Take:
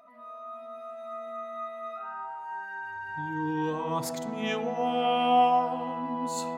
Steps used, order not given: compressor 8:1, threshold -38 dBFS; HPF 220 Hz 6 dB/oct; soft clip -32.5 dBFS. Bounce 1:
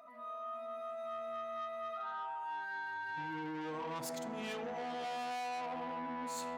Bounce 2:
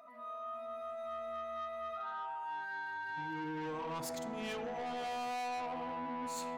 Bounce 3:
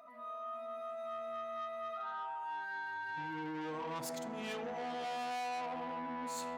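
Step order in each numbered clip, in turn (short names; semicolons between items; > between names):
soft clip > HPF > compressor; HPF > soft clip > compressor; soft clip > compressor > HPF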